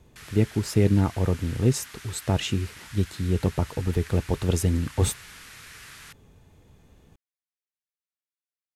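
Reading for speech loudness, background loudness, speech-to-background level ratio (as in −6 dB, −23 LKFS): −26.0 LKFS, −44.0 LKFS, 18.0 dB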